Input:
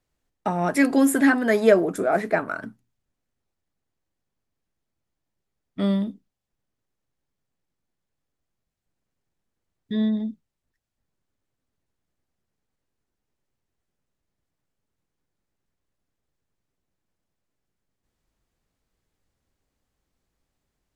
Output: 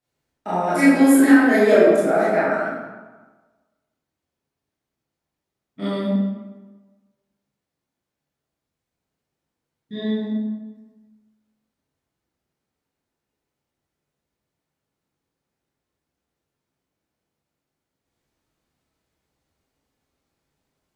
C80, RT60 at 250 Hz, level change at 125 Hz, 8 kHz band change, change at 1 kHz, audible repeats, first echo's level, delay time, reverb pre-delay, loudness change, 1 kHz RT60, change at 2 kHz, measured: 0.5 dB, 1.3 s, n/a, n/a, +4.0 dB, none, none, none, 20 ms, +4.0 dB, 1.3 s, +4.0 dB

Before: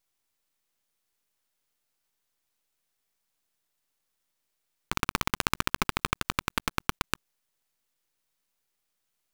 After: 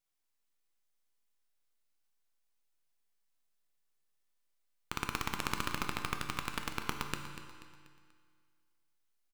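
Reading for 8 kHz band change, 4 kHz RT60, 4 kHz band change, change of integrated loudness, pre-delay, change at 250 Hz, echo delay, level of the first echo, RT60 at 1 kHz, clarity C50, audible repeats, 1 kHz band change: -7.5 dB, 1.9 s, -7.5 dB, -7.5 dB, 7 ms, -6.5 dB, 0.242 s, -13.0 dB, 2.0 s, 5.5 dB, 4, -7.0 dB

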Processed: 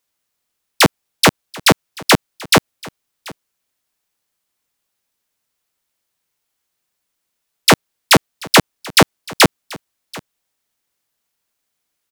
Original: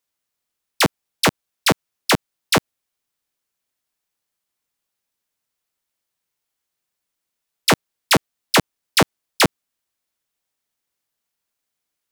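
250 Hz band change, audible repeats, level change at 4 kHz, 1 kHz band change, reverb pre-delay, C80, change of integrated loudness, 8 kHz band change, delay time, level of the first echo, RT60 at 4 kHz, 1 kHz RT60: +5.5 dB, 1, +5.5 dB, +5.5 dB, none, none, +5.5 dB, +5.5 dB, 0.735 s, -22.0 dB, none, none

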